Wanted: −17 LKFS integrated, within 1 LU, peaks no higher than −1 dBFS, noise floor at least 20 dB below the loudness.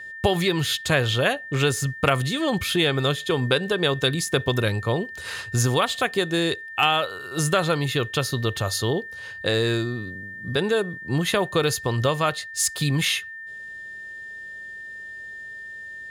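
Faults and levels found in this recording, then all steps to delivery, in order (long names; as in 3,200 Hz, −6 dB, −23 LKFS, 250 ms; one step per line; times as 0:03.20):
interfering tone 1,800 Hz; level of the tone −35 dBFS; integrated loudness −23.5 LKFS; sample peak −5.5 dBFS; target loudness −17.0 LKFS
→ notch filter 1,800 Hz, Q 30
level +6.5 dB
brickwall limiter −1 dBFS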